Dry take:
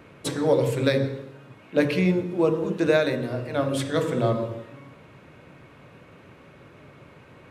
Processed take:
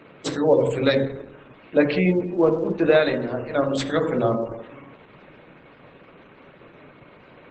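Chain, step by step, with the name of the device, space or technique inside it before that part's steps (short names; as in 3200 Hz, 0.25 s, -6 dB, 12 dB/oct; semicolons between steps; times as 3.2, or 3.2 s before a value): 3.32–4.35 dynamic EQ 3100 Hz, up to -3 dB, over -55 dBFS, Q 6.4; noise-suppressed video call (HPF 170 Hz 12 dB/oct; spectral gate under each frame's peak -30 dB strong; gain +3.5 dB; Opus 12 kbps 48000 Hz)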